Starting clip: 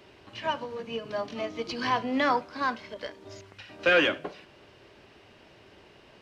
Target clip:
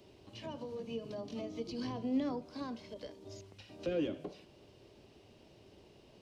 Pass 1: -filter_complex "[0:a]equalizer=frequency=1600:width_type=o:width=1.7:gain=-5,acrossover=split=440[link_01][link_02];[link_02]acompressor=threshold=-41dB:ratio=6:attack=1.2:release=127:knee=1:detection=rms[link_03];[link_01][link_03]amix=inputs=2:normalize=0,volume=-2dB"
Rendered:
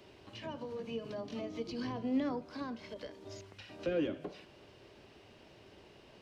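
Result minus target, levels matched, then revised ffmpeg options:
2,000 Hz band +4.0 dB
-filter_complex "[0:a]equalizer=frequency=1600:width_type=o:width=1.7:gain=-15,acrossover=split=440[link_01][link_02];[link_02]acompressor=threshold=-41dB:ratio=6:attack=1.2:release=127:knee=1:detection=rms[link_03];[link_01][link_03]amix=inputs=2:normalize=0,volume=-2dB"

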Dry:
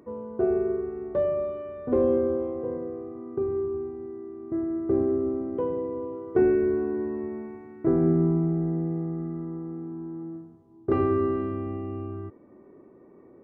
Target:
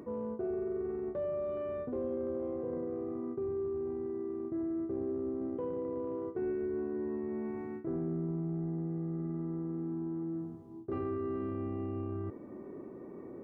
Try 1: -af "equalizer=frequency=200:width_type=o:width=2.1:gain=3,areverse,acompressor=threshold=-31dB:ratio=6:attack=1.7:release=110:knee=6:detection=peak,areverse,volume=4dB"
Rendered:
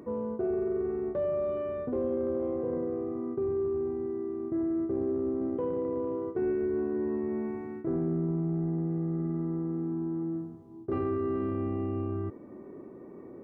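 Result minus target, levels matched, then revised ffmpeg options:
downward compressor: peak gain reduction −5.5 dB
-af "equalizer=frequency=200:width_type=o:width=2.1:gain=3,areverse,acompressor=threshold=-37.5dB:ratio=6:attack=1.7:release=110:knee=6:detection=peak,areverse,volume=4dB"

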